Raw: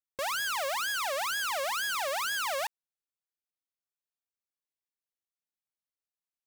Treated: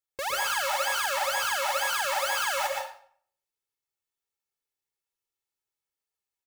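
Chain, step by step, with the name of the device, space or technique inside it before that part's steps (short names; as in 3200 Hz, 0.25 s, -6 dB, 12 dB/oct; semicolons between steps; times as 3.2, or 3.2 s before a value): microphone above a desk (comb 2.3 ms, depth 59%; reverb RT60 0.55 s, pre-delay 0.108 s, DRR 0 dB)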